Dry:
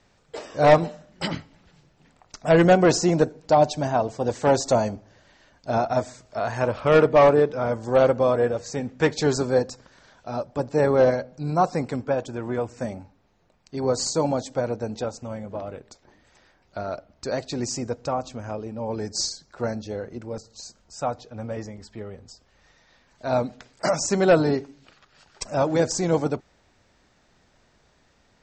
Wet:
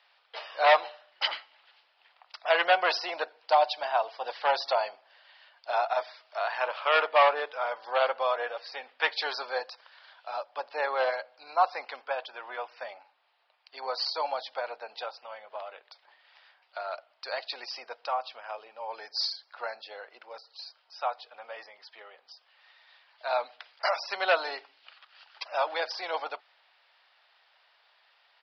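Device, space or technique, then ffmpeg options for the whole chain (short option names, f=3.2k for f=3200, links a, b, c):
musical greeting card: -af "aresample=11025,aresample=44100,highpass=f=740:w=0.5412,highpass=f=740:w=1.3066,equalizer=f=3k:t=o:w=0.56:g=6"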